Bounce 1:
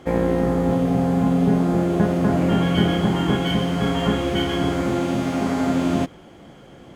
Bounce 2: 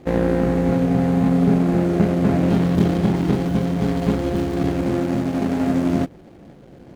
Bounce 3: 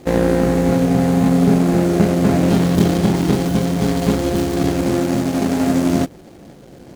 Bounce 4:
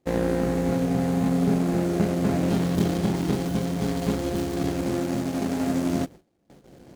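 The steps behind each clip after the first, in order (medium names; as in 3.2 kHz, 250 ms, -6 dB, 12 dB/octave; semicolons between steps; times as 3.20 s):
median filter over 41 samples; trim +2 dB
tone controls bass -2 dB, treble +10 dB; trim +4 dB
gate with hold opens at -31 dBFS; trim -8.5 dB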